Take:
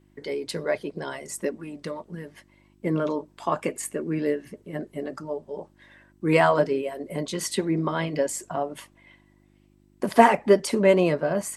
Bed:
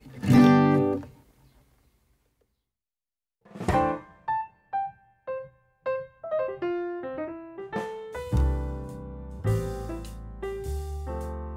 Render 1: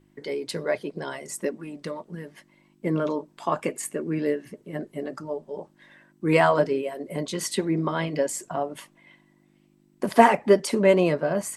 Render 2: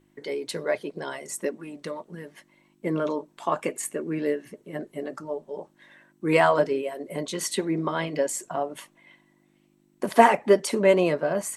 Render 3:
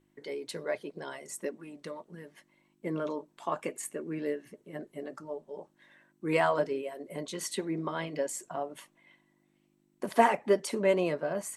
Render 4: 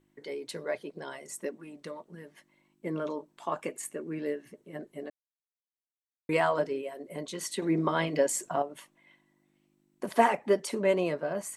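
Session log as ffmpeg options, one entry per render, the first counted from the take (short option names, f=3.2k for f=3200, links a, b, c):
-af "bandreject=f=50:t=h:w=4,bandreject=f=100:t=h:w=4"
-af "bass=f=250:g=-5,treble=f=4k:g=1,bandreject=f=4.9k:w=12"
-af "volume=-7dB"
-filter_complex "[0:a]asplit=5[a][b][c][d][e];[a]atrim=end=5.1,asetpts=PTS-STARTPTS,afade=t=out:st=5.096:d=0.004:c=hsin[f];[b]atrim=start=5.1:end=6.29,asetpts=PTS-STARTPTS,volume=0[g];[c]atrim=start=6.29:end=7.622,asetpts=PTS-STARTPTS,afade=t=in:d=0.004:c=hsin[h];[d]atrim=start=7.618:end=8.622,asetpts=PTS-STARTPTS,volume=6.5dB[i];[e]atrim=start=8.618[j];[f][g][h]concat=n=3:v=0:a=1[k];[k][i]acrossfade=d=0.004:c1=hsin:c2=hsin[l];[l][j]acrossfade=d=0.004:c1=hsin:c2=hsin"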